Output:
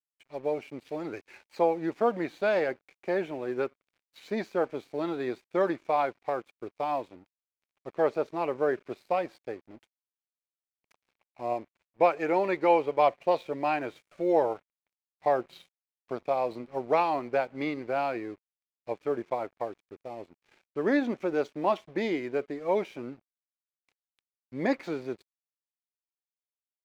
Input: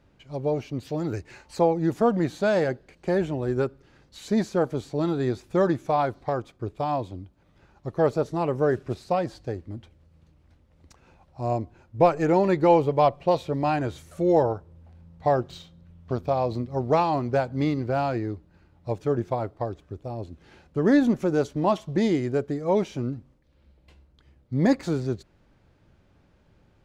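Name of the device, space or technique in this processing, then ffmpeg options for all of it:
pocket radio on a weak battery: -filter_complex "[0:a]asettb=1/sr,asplit=3[s0][s1][s2];[s0]atrim=end=11.544[s3];[s1]atrim=start=11.54:end=12.99,asetpts=PTS-STARTPTS,afade=t=in:d=0.004:c=qsin,afade=t=out:st=1.446:d=0.004:c=qsin,lowshelf=f=360:g=-3[s4];[s2]atrim=start=12.986[s5];[s3][s4]acrossfade=d=0.004:c1=hsin:c2=qsin[s6];[s6][s5]acrossfade=d=0.004:c1=qsin:c2=hsin,highpass=340,lowpass=4100,aeval=exprs='sgn(val(0))*max(abs(val(0))-0.00211,0)':c=same,equalizer=f=2300:t=o:w=0.38:g=7.5,volume=0.75"

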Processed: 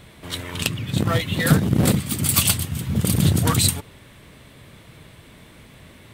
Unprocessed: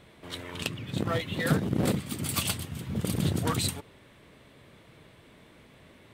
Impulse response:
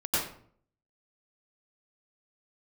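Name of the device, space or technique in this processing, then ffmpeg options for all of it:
smiley-face EQ: -af "lowshelf=f=190:g=5.5,equalizer=f=410:t=o:w=1.8:g=-3.5,highshelf=f=6400:g=8,volume=2.37"

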